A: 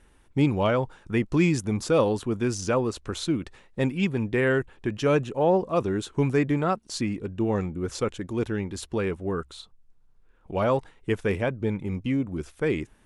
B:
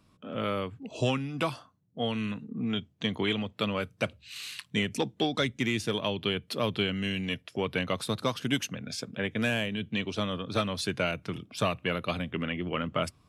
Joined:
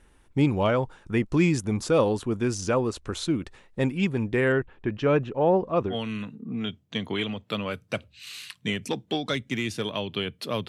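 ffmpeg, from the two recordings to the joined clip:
-filter_complex "[0:a]asettb=1/sr,asplit=3[a][b][c];[a]atrim=end=4.524[d];[b]atrim=start=4.52:end=5.96,asetpts=PTS-STARTPTS,afade=t=in:d=0.004:c=qsin,afade=t=out:st=1.436:d=0.004:c=qsin,lowpass=3.1k[e];[c]atrim=start=5.956[f];[d][e]acrossfade=d=0.004:c1=hsin:c2=qsin[g];[g][f]acrossfade=d=0.004:c1=qsin:c2=hsin,apad=whole_dur=10.68,atrim=end=10.68,atrim=end=5.96,asetpts=PTS-STARTPTS[h];[1:a]atrim=start=1.95:end=6.77,asetpts=PTS-STARTPTS[i];[h][i]acrossfade=d=0.1:c1=tri:c2=tri"

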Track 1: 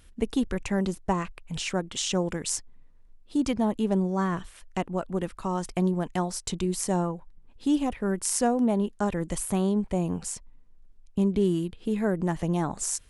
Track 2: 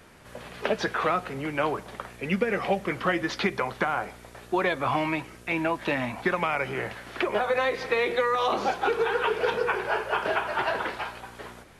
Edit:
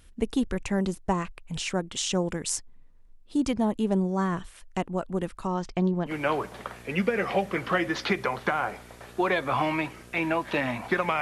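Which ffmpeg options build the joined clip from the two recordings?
-filter_complex "[0:a]asettb=1/sr,asplit=3[a][b][c];[a]atrim=end=5.474[d];[b]atrim=start=5.47:end=6.13,asetpts=PTS-STARTPTS,afade=t=in:d=0.004:c=qsin,afade=t=out:st=0.656:d=0.004:c=qsin,lowpass=f=5.7k:w=0.5412,lowpass=f=5.7k:w=1.3066[e];[c]atrim=start=6.126[f];[d][e]acrossfade=d=0.004:c1=hsin:c2=qsin[g];[g][f]acrossfade=d=0.004:c1=qsin:c2=hsin,apad=whole_dur=11.21,atrim=end=11.21,atrim=end=6.13,asetpts=PTS-STARTPTS[h];[1:a]atrim=start=1.39:end=6.55,asetpts=PTS-STARTPTS[i];[h][i]acrossfade=d=0.08:c1=tri:c2=tri"

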